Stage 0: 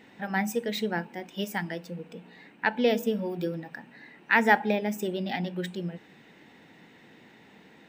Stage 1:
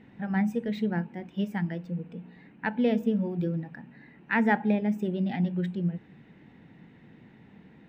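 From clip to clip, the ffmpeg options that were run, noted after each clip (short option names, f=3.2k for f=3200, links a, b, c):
-af "bass=f=250:g=15,treble=f=4k:g=-14,volume=-5dB"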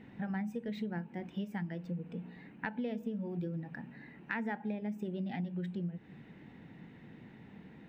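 -af "acompressor=threshold=-35dB:ratio=6"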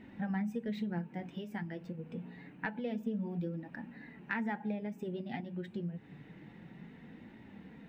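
-af "flanger=delay=3.1:depth=5.8:regen=-38:speed=0.27:shape=triangular,volume=4.5dB"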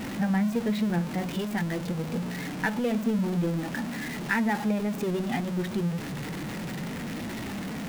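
-af "aeval=exprs='val(0)+0.5*0.0112*sgn(val(0))':c=same,volume=8dB"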